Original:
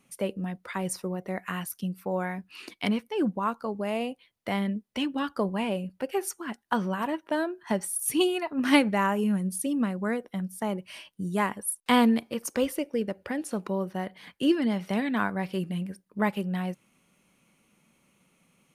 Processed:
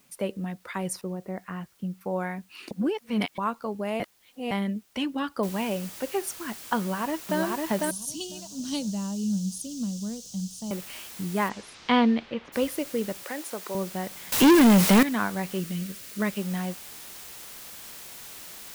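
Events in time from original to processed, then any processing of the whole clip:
0:01.01–0:02.01: head-to-tape spacing loss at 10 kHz 42 dB
0:02.71–0:03.38: reverse
0:04.00–0:04.51: reverse
0:05.43: noise floor change −64 dB −43 dB
0:06.79–0:07.40: delay throw 500 ms, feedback 45%, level −1.5 dB
0:07.91–0:10.71: drawn EQ curve 200 Hz 0 dB, 350 Hz −16 dB, 520 Hz −12 dB, 1,200 Hz −21 dB, 2,100 Hz −28 dB, 3,000 Hz −8 dB, 6,300 Hz +8 dB, 12,000 Hz −11 dB
0:11.48–0:12.52: low-pass filter 7,300 Hz → 3,000 Hz 24 dB per octave
0:13.23–0:13.75: high-pass filter 400 Hz
0:14.32–0:15.03: leveller curve on the samples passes 5
0:15.60–0:16.38: parametric band 850 Hz −12.5 dB 0.48 octaves

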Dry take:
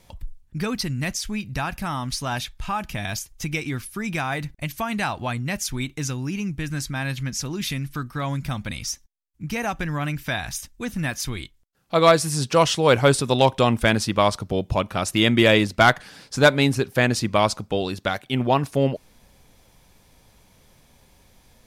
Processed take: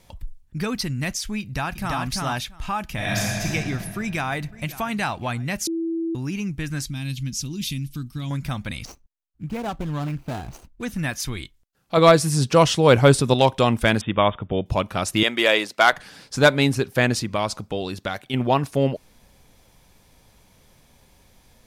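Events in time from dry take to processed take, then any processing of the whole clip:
0:01.41–0:01.98: delay throw 340 ms, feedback 10%, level −2 dB
0:02.94–0:03.45: thrown reverb, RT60 2.9 s, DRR −6 dB
0:03.98–0:04.52: delay throw 540 ms, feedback 40%, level −16.5 dB
0:05.67–0:06.15: beep over 330 Hz −22.5 dBFS
0:06.86–0:08.31: flat-topped bell 910 Hz −15.5 dB 2.6 octaves
0:08.85–0:10.83: running median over 25 samples
0:11.97–0:13.34: low-shelf EQ 420 Hz +5.5 dB
0:14.01–0:14.66: linear-phase brick-wall low-pass 3,700 Hz
0:15.23–0:15.93: high-pass filter 470 Hz
0:17.22–0:18.34: downward compressor 1.5 to 1, threshold −27 dBFS

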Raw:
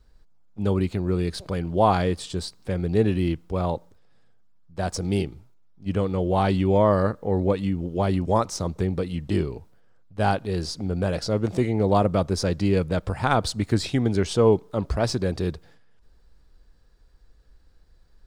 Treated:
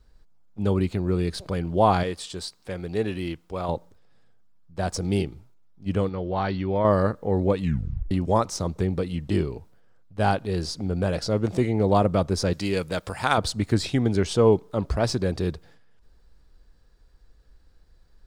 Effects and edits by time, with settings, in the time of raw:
0:02.03–0:03.69: low-shelf EQ 370 Hz −10 dB
0:06.09–0:06.85: Chebyshev low-pass with heavy ripple 5,900 Hz, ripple 6 dB
0:07.61: tape stop 0.50 s
0:12.53–0:13.38: spectral tilt +2.5 dB per octave

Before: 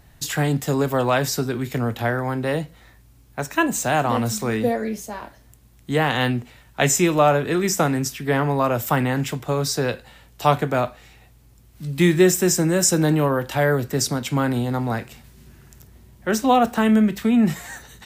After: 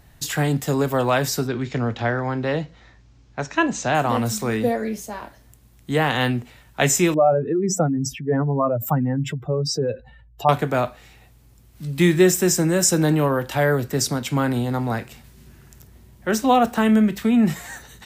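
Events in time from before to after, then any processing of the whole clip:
0:01.47–0:03.95: Butterworth low-pass 6,600 Hz
0:07.14–0:10.49: expanding power law on the bin magnitudes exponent 2.3

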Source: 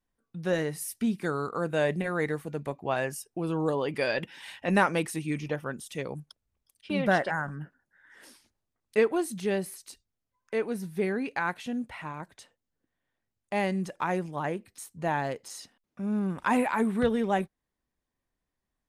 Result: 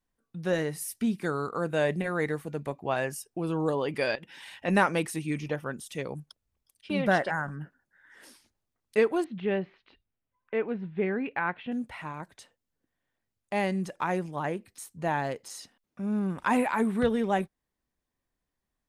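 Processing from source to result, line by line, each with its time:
0:04.15–0:04.65: downward compressor 10 to 1, threshold −41 dBFS
0:09.24–0:11.72: Butterworth low-pass 3,200 Hz

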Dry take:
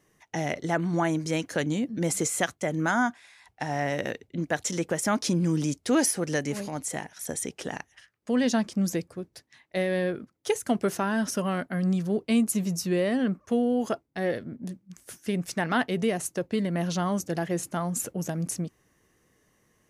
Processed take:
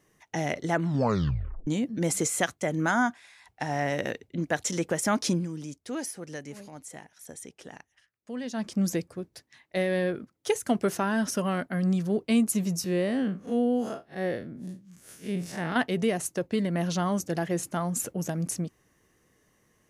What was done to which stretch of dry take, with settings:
0:00.81: tape stop 0.86 s
0:05.32–0:08.70: duck −11 dB, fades 0.16 s
0:12.84–0:15.76: spectrum smeared in time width 100 ms

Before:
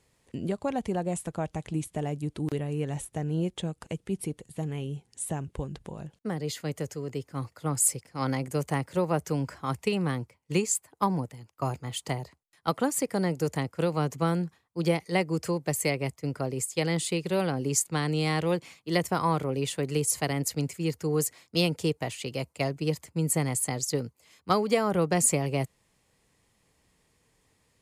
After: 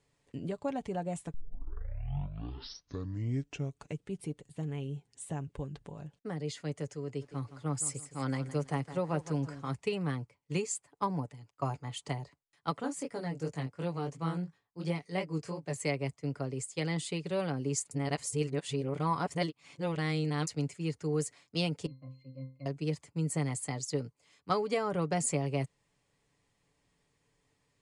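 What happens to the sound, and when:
0:01.34: tape start 2.70 s
0:07.05–0:09.69: feedback echo at a low word length 165 ms, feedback 35%, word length 8 bits, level −13 dB
0:11.17–0:12.05: dynamic equaliser 910 Hz, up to +4 dB, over −43 dBFS, Q 1
0:12.80–0:15.78: chorus effect 2.8 Hz, delay 17 ms, depth 5.8 ms
0:17.91–0:20.47: reverse
0:21.86–0:22.66: resonances in every octave C, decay 0.32 s
whole clip: Butterworth low-pass 9,900 Hz 48 dB per octave; high-shelf EQ 7,800 Hz −5.5 dB; comb filter 7 ms, depth 42%; level −6.5 dB

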